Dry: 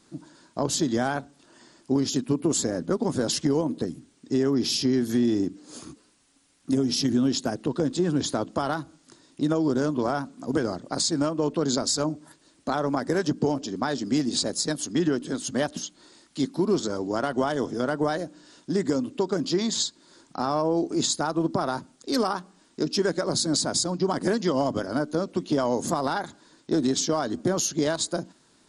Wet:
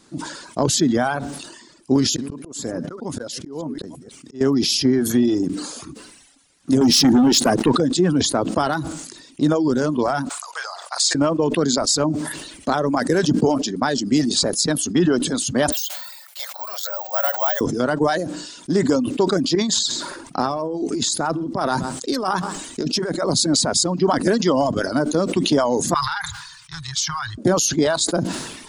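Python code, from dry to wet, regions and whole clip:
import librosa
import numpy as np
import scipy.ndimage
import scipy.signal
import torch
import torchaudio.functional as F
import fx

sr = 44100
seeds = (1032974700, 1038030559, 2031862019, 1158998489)

y = fx.chain(x, sr, fx.reverse_delay(ms=166, wet_db=-14.0),
    fx.auto_swell(attack_ms=515.0), at=(1.96, 4.41))
y = fx.chain(y, sr, fx.highpass(hz=120.0, slope=12),
    fx.leveller(passes=2), at=(6.81, 7.76))
y = fx.chain(y, sr, fx.cheby2_highpass(hz=260.0, order=4, stop_db=60),
    fx.room_flutter(wall_m=9.3, rt60_s=0.28), at=(10.29, 11.15))
y = fx.chain(y, sr, fx.cheby_ripple_highpass(hz=550.0, ripple_db=3),
    fx.resample_bad(factor=2, down='filtered', up='zero_stuff'), at=(15.72, 17.61))
y = fx.chain(y, sr, fx.over_compress(threshold_db=-28.0, ratio=-1.0),
    fx.echo_single(ms=129, db=-19.0), at=(19.55, 23.27))
y = fx.chain(y, sr, fx.cheby2_bandstop(low_hz=210.0, high_hz=630.0, order=4, stop_db=40),
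    fx.peak_eq(hz=8000.0, db=-6.0, octaves=0.7), at=(25.94, 27.38))
y = fx.dereverb_blind(y, sr, rt60_s=0.92)
y = fx.sustainer(y, sr, db_per_s=48.0)
y = F.gain(torch.from_numpy(y), 6.5).numpy()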